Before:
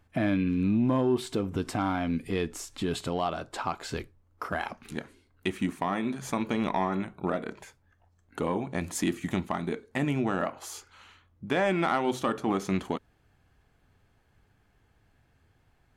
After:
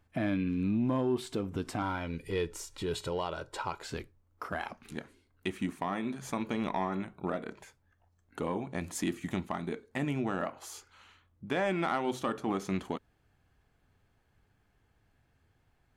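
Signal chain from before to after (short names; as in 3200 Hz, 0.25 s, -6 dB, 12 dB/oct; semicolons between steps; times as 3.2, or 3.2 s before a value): 1.82–3.83 comb 2.1 ms, depth 63%; gain -4.5 dB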